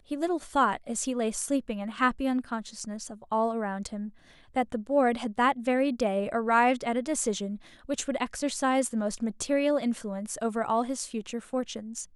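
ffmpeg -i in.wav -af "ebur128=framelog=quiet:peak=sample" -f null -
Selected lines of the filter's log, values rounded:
Integrated loudness:
  I:         -28.8 LUFS
  Threshold: -39.0 LUFS
Loudness range:
  LRA:         3.7 LU
  Threshold: -48.8 LUFS
  LRA low:   -30.6 LUFS
  LRA high:  -26.9 LUFS
Sample peak:
  Peak:      -11.1 dBFS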